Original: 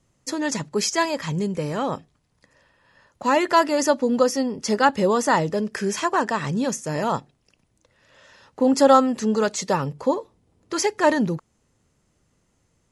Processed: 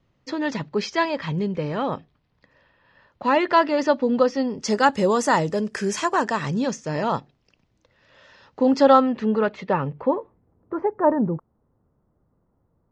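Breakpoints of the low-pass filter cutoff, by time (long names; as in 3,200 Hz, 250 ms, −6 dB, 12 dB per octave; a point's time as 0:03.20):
low-pass filter 24 dB per octave
0:04.37 4,200 Hz
0:04.80 9,500 Hz
0:06.07 9,500 Hz
0:06.83 5,300 Hz
0:08.64 5,300 Hz
0:09.44 2,800 Hz
0:09.96 2,800 Hz
0:10.75 1,200 Hz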